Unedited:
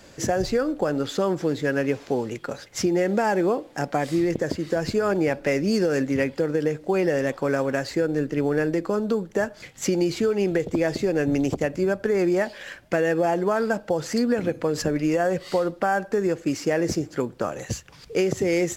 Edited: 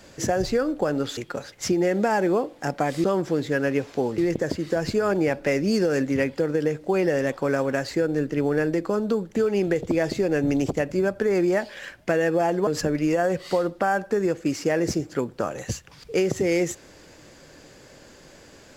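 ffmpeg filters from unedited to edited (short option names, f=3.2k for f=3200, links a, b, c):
-filter_complex "[0:a]asplit=6[a][b][c][d][e][f];[a]atrim=end=1.172[g];[b]atrim=start=2.308:end=4.182[h];[c]atrim=start=1.168:end=2.312[i];[d]atrim=start=4.178:end=9.362[j];[e]atrim=start=10.198:end=13.512[k];[f]atrim=start=14.678[l];[g][h]acrossfade=d=0.004:c1=hsin:c2=hsin[m];[m][i]acrossfade=d=0.004:c1=hsin:c2=hsin[n];[n][j]acrossfade=d=0.004:c1=hsin:c2=hsin[o];[o][k]acrossfade=d=0.004:c1=hsin:c2=hsin[p];[p][l]acrossfade=d=0.004:c1=hsin:c2=hsin"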